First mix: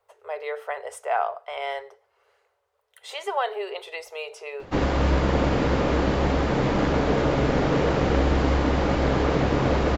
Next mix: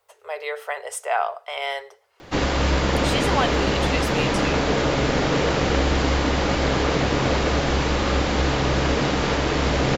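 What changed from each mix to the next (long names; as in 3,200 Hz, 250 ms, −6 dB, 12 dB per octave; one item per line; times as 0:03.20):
background: entry −2.40 s
master: add high-shelf EQ 2,200 Hz +11.5 dB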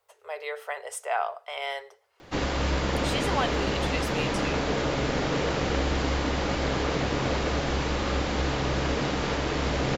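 speech −5.0 dB
background −6.0 dB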